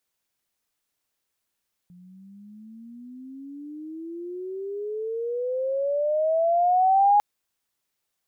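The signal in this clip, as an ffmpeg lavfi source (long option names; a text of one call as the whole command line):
ffmpeg -f lavfi -i "aevalsrc='pow(10,(-14+32*(t/5.3-1))/20)*sin(2*PI*175*5.3/(27*log(2)/12)*(exp(27*log(2)/12*t/5.3)-1))':duration=5.3:sample_rate=44100" out.wav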